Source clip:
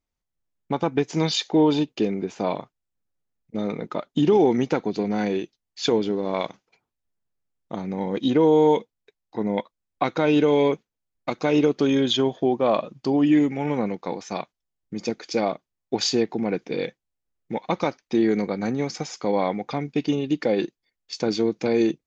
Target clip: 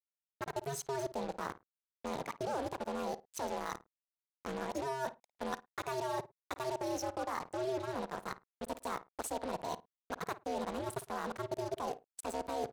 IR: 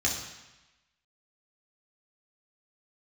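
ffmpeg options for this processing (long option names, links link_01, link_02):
-filter_complex "[0:a]equalizer=frequency=2400:width=0.38:gain=-2.5,alimiter=limit=-13.5dB:level=0:latency=1:release=212,areverse,acompressor=threshold=-38dB:ratio=4,areverse,acrusher=bits=6:mix=0:aa=0.5,aeval=exprs='val(0)*sin(2*PI*78*n/s)':channel_layout=same,asplit=2[link_01][link_02];[link_02]adelay=93,lowpass=frequency=1000:poles=1,volume=-14dB,asplit=2[link_03][link_04];[link_04]adelay=93,lowpass=frequency=1000:poles=1,volume=0.2[link_05];[link_01][link_03][link_05]amix=inputs=3:normalize=0,asetrate=76440,aresample=44100,adynamicequalizer=threshold=0.002:dfrequency=1500:dqfactor=0.7:tfrequency=1500:tqfactor=0.7:attack=5:release=100:ratio=0.375:range=2:mode=cutabove:tftype=highshelf,volume=3.5dB"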